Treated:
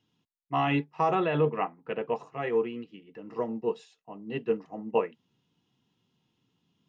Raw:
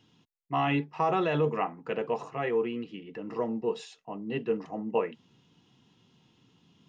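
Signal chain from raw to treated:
0:01.15–0:02.16: low-pass filter 3,500 Hz 24 dB per octave
expander for the loud parts 1.5 to 1, over −49 dBFS
level +2.5 dB

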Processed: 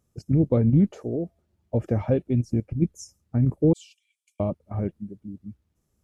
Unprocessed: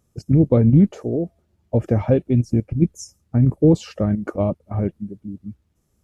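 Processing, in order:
0:03.73–0:04.40: Chebyshev high-pass with heavy ripple 2,300 Hz, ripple 9 dB
level −5.5 dB

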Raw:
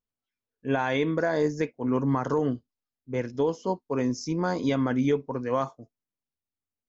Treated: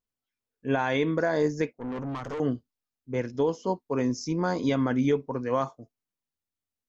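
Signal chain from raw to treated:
0:01.73–0:02.40: tube saturation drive 30 dB, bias 0.8

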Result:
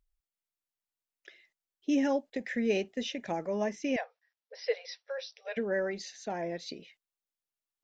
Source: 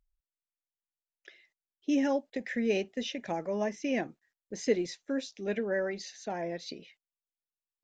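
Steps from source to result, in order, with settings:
0:03.96–0:05.57: linear-phase brick-wall band-pass 440–5,900 Hz

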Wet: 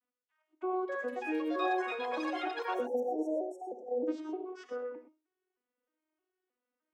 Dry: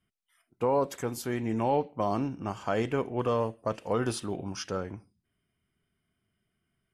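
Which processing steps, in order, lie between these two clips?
vocoder with an arpeggio as carrier major triad, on B3, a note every 309 ms
three-way crossover with the lows and the highs turned down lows −23 dB, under 360 Hz, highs −12 dB, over 2,200 Hz
delay with pitch and tempo change per echo 468 ms, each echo +7 semitones, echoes 3
time-frequency box erased 0:02.74–0:04.08, 920–5,300 Hz
dynamic equaliser 1,100 Hz, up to −5 dB, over −46 dBFS, Q 1
reverb whose tail is shaped and stops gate 140 ms rising, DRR 7.5 dB

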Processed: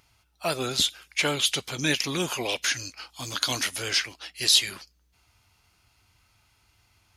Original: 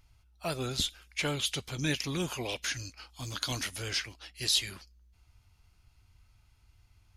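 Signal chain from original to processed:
high-pass filter 320 Hz 6 dB per octave
level +8 dB

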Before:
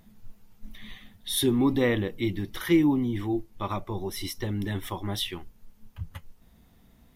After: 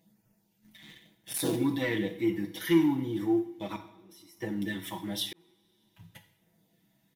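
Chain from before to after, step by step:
0:00.82–0:01.56: sub-harmonics by changed cycles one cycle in 3, muted
high-pass filter 160 Hz 12 dB per octave
parametric band 1,200 Hz −10 dB 0.34 octaves
comb filter 6.2 ms, depth 86%
leveller curve on the samples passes 1
0:03.76–0:04.37: output level in coarse steps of 24 dB
auto-filter notch sine 0.97 Hz 430–4,000 Hz
coupled-rooms reverb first 0.63 s, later 2.5 s, from −22 dB, DRR 6 dB
0:05.33–0:06.02: fade in
level −7.5 dB

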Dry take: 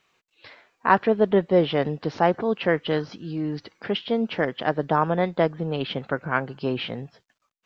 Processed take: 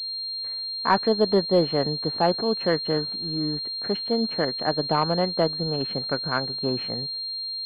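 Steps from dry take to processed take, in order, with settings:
leveller curve on the samples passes 1
switching amplifier with a slow clock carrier 4,200 Hz
level −4.5 dB

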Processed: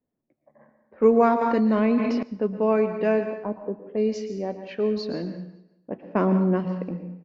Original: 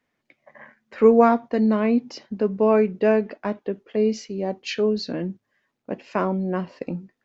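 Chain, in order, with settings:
0:03.25–0:03.86: low-pass filter 1,100 Hz 24 dB per octave
0:06.07–0:06.75: parametric band 240 Hz +8 dB 1.8 octaves
low-pass that shuts in the quiet parts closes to 530 Hz, open at −16.5 dBFS
repeating echo 187 ms, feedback 36%, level −22 dB
dense smooth reverb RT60 0.67 s, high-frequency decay 1×, pre-delay 105 ms, DRR 8.5 dB
0:01.41–0:02.23: envelope flattener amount 70%
level −3 dB

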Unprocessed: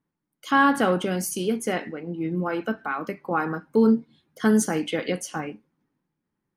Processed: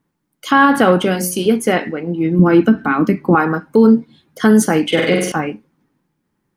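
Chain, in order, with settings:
0:01.00–0:01.46: mains-hum notches 60/120/180/240/300/360/420/480/540 Hz
0:02.39–0:03.35: low shelf with overshoot 400 Hz +9.5 dB, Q 1.5
0:04.86–0:05.32: flutter between parallel walls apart 8.2 metres, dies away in 0.84 s
dynamic equaliser 7,100 Hz, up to −6 dB, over −45 dBFS, Q 1.1
boost into a limiter +12 dB
level −1 dB

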